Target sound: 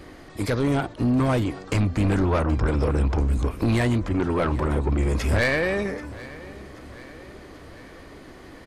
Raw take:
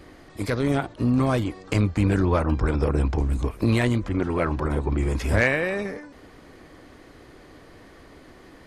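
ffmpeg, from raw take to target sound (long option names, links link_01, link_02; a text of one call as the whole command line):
ffmpeg -i in.wav -af "asoftclip=type=tanh:threshold=-19dB,aecho=1:1:782|1564|2346|3128:0.112|0.0606|0.0327|0.0177,volume=3.5dB" out.wav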